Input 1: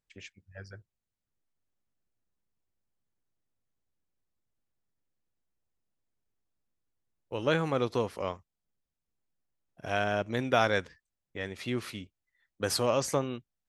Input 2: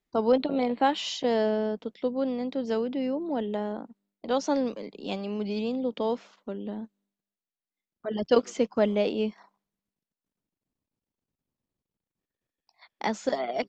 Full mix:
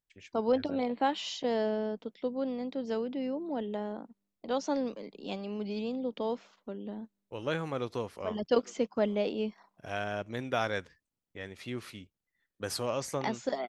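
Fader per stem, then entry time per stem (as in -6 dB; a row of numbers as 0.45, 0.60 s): -5.5, -5.0 dB; 0.00, 0.20 s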